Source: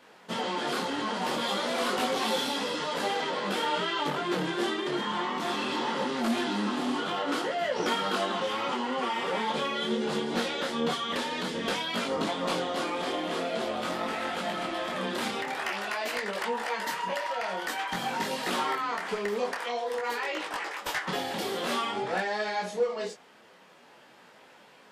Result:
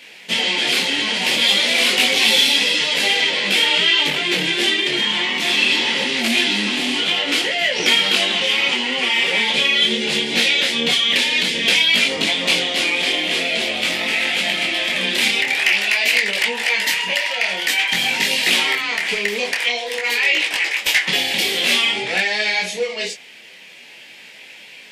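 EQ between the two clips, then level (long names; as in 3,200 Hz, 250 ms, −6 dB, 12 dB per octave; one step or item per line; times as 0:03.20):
high shelf with overshoot 1,700 Hz +10.5 dB, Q 3
+5.0 dB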